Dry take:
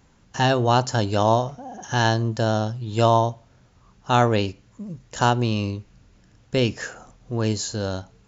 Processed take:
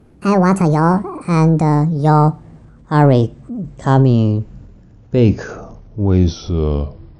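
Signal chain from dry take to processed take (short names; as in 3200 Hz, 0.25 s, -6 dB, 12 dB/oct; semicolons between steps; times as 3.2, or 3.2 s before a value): speed glide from 158% -> 72%; transient shaper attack -3 dB, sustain +6 dB; tilt shelf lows +9.5 dB, about 1100 Hz; gain +2 dB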